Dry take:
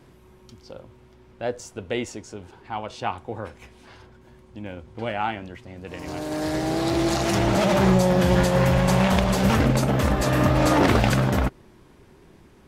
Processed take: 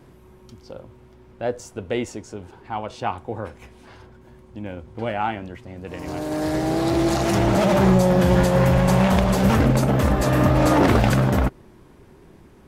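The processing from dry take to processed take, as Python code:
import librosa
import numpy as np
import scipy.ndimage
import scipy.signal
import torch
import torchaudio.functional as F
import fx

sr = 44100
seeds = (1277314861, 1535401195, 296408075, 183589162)

p1 = fx.peak_eq(x, sr, hz=4100.0, db=-4.5, octaves=2.7)
p2 = 10.0 ** (-15.5 / 20.0) * np.tanh(p1 / 10.0 ** (-15.5 / 20.0))
y = p1 + (p2 * 10.0 ** (-7.0 / 20.0))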